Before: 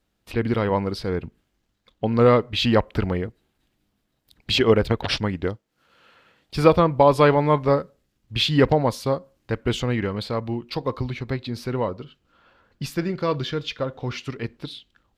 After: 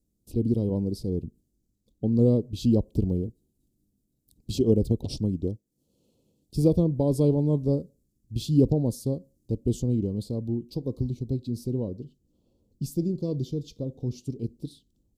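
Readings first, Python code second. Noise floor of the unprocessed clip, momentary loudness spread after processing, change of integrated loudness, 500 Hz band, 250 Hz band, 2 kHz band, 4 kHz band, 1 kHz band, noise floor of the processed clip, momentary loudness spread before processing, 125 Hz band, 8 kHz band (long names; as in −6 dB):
−73 dBFS, 13 LU, −4.5 dB, −8.0 dB, −0.5 dB, below −30 dB, −17.0 dB, −24.0 dB, −75 dBFS, 14 LU, −0.5 dB, −3.0 dB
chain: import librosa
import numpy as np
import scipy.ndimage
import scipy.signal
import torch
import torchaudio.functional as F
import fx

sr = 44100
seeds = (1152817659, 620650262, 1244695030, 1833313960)

y = scipy.signal.sosfilt(scipy.signal.cheby1(2, 1.0, [300.0, 8000.0], 'bandstop', fs=sr, output='sos'), x)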